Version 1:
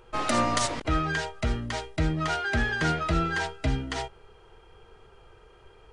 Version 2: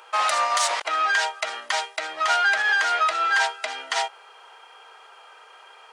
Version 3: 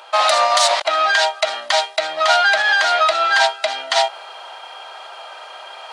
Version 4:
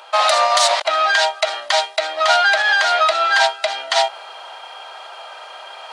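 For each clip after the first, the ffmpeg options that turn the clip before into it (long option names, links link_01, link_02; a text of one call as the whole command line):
ffmpeg -i in.wav -filter_complex "[0:a]asplit=2[link_01][link_02];[link_02]asoftclip=type=tanh:threshold=-28.5dB,volume=-6.5dB[link_03];[link_01][link_03]amix=inputs=2:normalize=0,alimiter=limit=-19.5dB:level=0:latency=1:release=67,highpass=frequency=700:width=0.5412,highpass=frequency=700:width=1.3066,volume=8.5dB" out.wav
ffmpeg -i in.wav -af "equalizer=frequency=450:width=7.4:gain=-13.5,areverse,acompressor=mode=upward:threshold=-35dB:ratio=2.5,areverse,equalizer=frequency=160:width_type=o:width=0.67:gain=8,equalizer=frequency=630:width_type=o:width=0.67:gain=11,equalizer=frequency=4000:width_type=o:width=0.67:gain=9,volume=3.5dB" out.wav
ffmpeg -i in.wav -af "highpass=frequency=320:width=0.5412,highpass=frequency=320:width=1.3066" out.wav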